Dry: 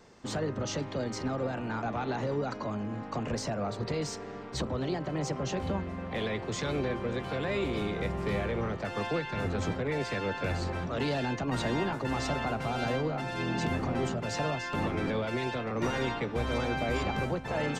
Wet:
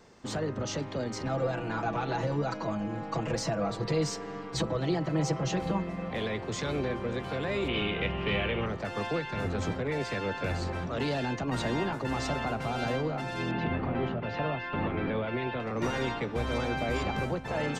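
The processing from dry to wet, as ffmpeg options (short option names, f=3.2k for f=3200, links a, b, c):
-filter_complex "[0:a]asettb=1/sr,asplit=3[a][b][c];[a]atrim=end=1.254[d];[b]atrim=start=1.25:end=6.11,asetpts=PTS-STARTPTS,afade=t=in:d=0.004:c=qsin,afade=t=out:st=4.856:d=0.004:c=qsin,aecho=1:1:6.1:0.91,atrim=end_sample=214326[e];[c]atrim=start=6.106[f];[d][e]acrossfade=d=0.004:c1=hsin:c2=qsin[g];[g][f]acrossfade=d=0.004:c1=qsin:c2=hsin,asettb=1/sr,asplit=3[h][i][j];[h]atrim=end=7.684[k];[i]atrim=start=7.68:end=8.66,asetpts=PTS-STARTPTS,afade=t=in:d=0.004:c=qsin,afade=t=out:st=0.976:d=0.004:c=qsin,lowpass=f=2.9k:t=q:w=6.7[l];[j]atrim=start=8.656[m];[k][l]acrossfade=d=0.004:c1=hsin:c2=qsin[n];[n][m]acrossfade=d=0.004:c1=qsin:c2=hsin,asettb=1/sr,asplit=3[o][p][q];[o]atrim=end=13.514[r];[p]atrim=start=13.51:end=15.6,asetpts=PTS-STARTPTS,afade=t=in:d=0.004:c=qsin,afade=t=out:st=2.086:d=0.004:c=qsin,lowpass=f=3.3k:w=0.5412,lowpass=f=3.3k:w=1.3066[s];[q]atrim=start=15.596[t];[r][s]acrossfade=d=0.004:c1=hsin:c2=qsin[u];[u][t]acrossfade=d=0.004:c1=qsin:c2=hsin"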